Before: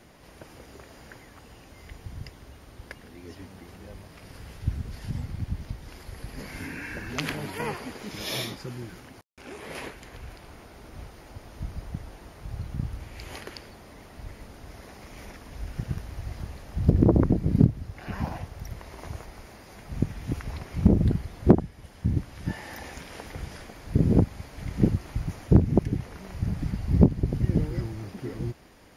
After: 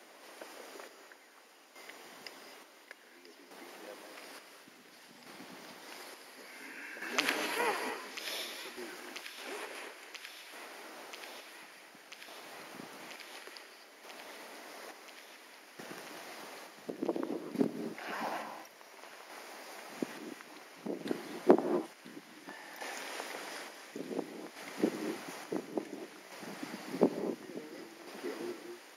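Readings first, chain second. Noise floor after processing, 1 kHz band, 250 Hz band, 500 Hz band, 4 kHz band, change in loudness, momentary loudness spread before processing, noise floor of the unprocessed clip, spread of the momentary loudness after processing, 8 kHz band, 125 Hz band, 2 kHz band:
-58 dBFS, -1.0 dB, -11.5 dB, -4.5 dB, -1.5 dB, -12.0 dB, 24 LU, -50 dBFS, 19 LU, -1.0 dB, -29.5 dB, -0.5 dB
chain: Bessel high-pass 430 Hz, order 6; square tremolo 0.57 Hz, depth 65%, duty 50%; on a send: feedback echo behind a high-pass 987 ms, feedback 83%, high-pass 1.6 kHz, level -12 dB; on the sum: gated-style reverb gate 280 ms rising, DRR 7 dB; trim +1 dB

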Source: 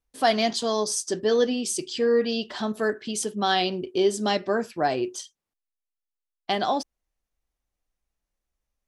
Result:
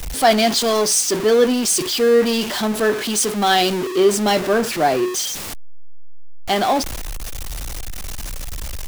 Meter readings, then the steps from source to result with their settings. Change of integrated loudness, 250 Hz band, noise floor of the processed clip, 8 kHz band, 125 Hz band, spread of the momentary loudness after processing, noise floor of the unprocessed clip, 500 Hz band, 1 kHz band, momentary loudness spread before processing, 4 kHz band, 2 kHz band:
+8.0 dB, +7.5 dB, -28 dBFS, +11.5 dB, +9.0 dB, 16 LU, under -85 dBFS, +7.5 dB, +7.0 dB, 7 LU, +8.5 dB, +8.0 dB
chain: jump at every zero crossing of -23 dBFS; three bands expanded up and down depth 40%; trim +4 dB

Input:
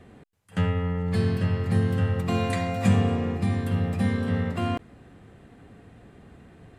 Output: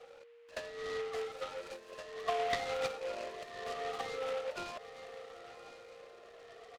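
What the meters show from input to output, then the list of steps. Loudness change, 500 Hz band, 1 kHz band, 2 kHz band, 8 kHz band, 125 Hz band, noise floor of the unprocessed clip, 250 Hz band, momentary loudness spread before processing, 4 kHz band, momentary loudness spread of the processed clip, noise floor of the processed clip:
-14.0 dB, -5.5 dB, -5.5 dB, -7.5 dB, -6.5 dB, -37.5 dB, -52 dBFS, -30.5 dB, 5 LU, -4.5 dB, 19 LU, -56 dBFS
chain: drifting ripple filter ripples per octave 1.4, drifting +0.7 Hz, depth 24 dB; reverb removal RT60 0.91 s; echo that smears into a reverb 955 ms, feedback 43%, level -16 dB; whistle 470 Hz -51 dBFS; treble shelf 5.5 kHz +5 dB; compression 6:1, threshold -24 dBFS, peak gain reduction 12 dB; steep high-pass 340 Hz 48 dB/octave; distance through air 220 m; comb 1.6 ms, depth 87%; delay time shaken by noise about 1.8 kHz, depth 0.063 ms; trim -6.5 dB

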